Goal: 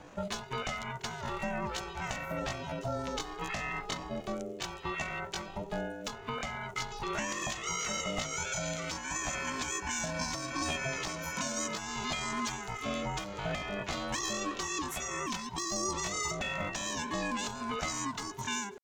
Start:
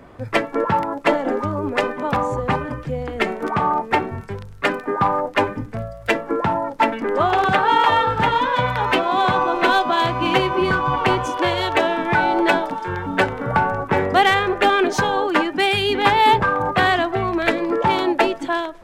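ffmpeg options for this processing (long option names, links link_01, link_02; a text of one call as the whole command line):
ffmpeg -i in.wav -filter_complex "[0:a]equalizer=frequency=3500:width_type=o:width=0.48:gain=13.5,acrossover=split=390|1300|4900[link_01][link_02][link_03][link_04];[link_01]acompressor=threshold=-29dB:ratio=4[link_05];[link_02]acompressor=threshold=-31dB:ratio=4[link_06];[link_03]acompressor=threshold=-23dB:ratio=4[link_07];[link_04]acompressor=threshold=-33dB:ratio=4[link_08];[link_05][link_06][link_07][link_08]amix=inputs=4:normalize=0,alimiter=limit=-13.5dB:level=0:latency=1:release=306,lowshelf=frequency=260:gain=10,asetrate=83250,aresample=44100,atempo=0.529732,aeval=exprs='val(0)*sin(2*PI*400*n/s)':channel_layout=same,volume=-8.5dB" out.wav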